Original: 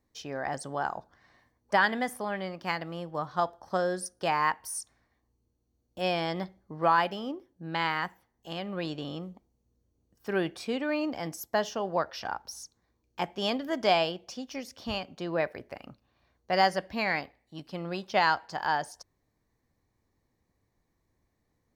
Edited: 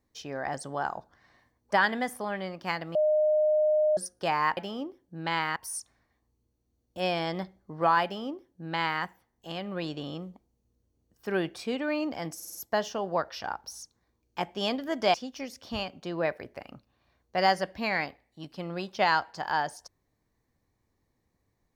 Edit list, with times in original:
2.95–3.97 bleep 612 Hz -20.5 dBFS
7.05–8.04 copy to 4.57
11.36 stutter 0.05 s, 5 plays
13.95–14.29 cut

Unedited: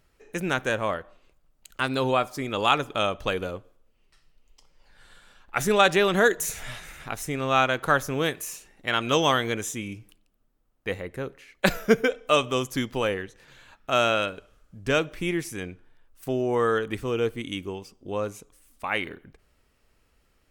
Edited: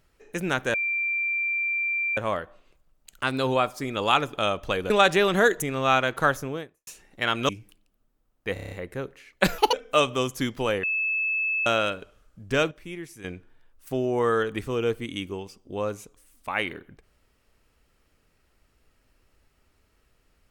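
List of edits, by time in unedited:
0.74 add tone 2360 Hz -23.5 dBFS 1.43 s
3.47–5.7 cut
6.42–7.28 cut
7.89–8.53 studio fade out
9.15–9.89 cut
10.93 stutter 0.03 s, 7 plays
11.8–12.09 speed 191%
13.19–14.02 bleep 2610 Hz -23 dBFS
15.07–15.6 gain -10 dB

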